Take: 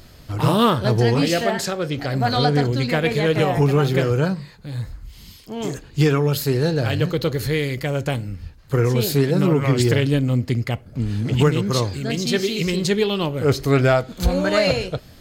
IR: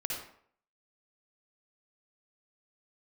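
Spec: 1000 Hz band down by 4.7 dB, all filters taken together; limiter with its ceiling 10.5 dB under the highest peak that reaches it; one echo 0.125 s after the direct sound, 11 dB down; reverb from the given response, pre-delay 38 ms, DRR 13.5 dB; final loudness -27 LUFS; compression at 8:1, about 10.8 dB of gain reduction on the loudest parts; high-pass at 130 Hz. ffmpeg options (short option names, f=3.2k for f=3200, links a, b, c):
-filter_complex "[0:a]highpass=130,equalizer=f=1k:t=o:g=-7,acompressor=threshold=-25dB:ratio=8,alimiter=level_in=0.5dB:limit=-24dB:level=0:latency=1,volume=-0.5dB,aecho=1:1:125:0.282,asplit=2[a][b];[1:a]atrim=start_sample=2205,adelay=38[c];[b][c]afir=irnorm=-1:irlink=0,volume=-16.5dB[d];[a][d]amix=inputs=2:normalize=0,volume=6.5dB"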